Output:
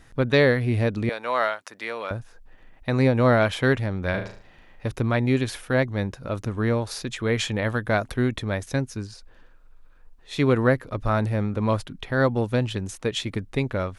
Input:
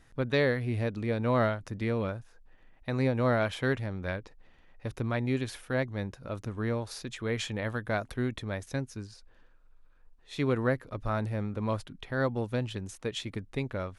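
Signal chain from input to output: 1.09–2.11 s: high-pass 780 Hz 12 dB/octave; 4.10–4.88 s: flutter echo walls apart 6.3 m, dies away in 0.44 s; trim +8 dB

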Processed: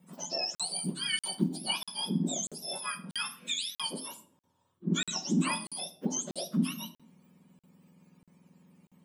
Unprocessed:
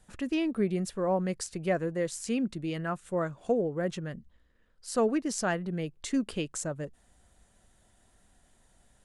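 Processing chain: spectrum inverted on a logarithmic axis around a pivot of 1.3 kHz; 0.45–1.68 s: companded quantiser 8-bit; simulated room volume 1000 m³, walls furnished, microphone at 0.98 m; crackling interface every 0.64 s, samples 2048, zero, from 0.55 s

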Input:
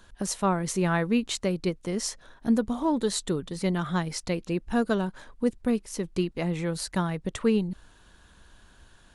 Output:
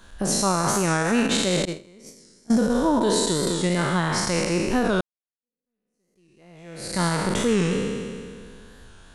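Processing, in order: spectral sustain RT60 2.08 s; 1.65–2.75 s: gate -21 dBFS, range -25 dB; 5.01–7.03 s: fade in exponential; peak limiter -14.5 dBFS, peak gain reduction 7.5 dB; warped record 45 rpm, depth 100 cents; trim +3 dB

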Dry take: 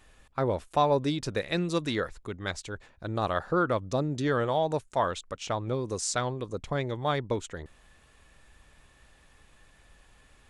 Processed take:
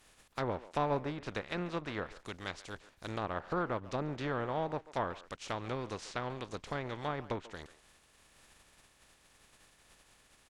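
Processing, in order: spectral contrast reduction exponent 0.49; low-pass that closes with the level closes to 1.4 kHz, closed at -24 dBFS; speakerphone echo 140 ms, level -16 dB; trim -7 dB

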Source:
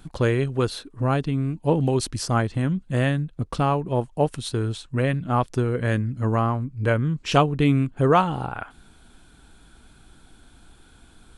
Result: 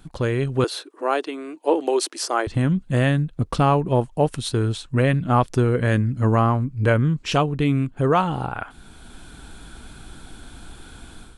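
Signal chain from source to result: 0.64–2.47 s: elliptic high-pass 330 Hz, stop band 70 dB; in parallel at -2.5 dB: peak limiter -15 dBFS, peak gain reduction 10.5 dB; on the sum: level rider gain up to 11.5 dB; trim -6 dB

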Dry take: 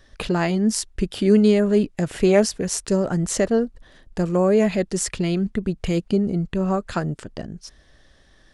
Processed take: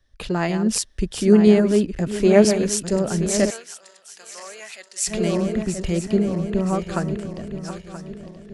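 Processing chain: backward echo that repeats 489 ms, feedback 73%, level -8 dB; 3.50–5.07 s: high-pass 1.4 kHz 12 dB/octave; three bands expanded up and down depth 40%; trim -1 dB

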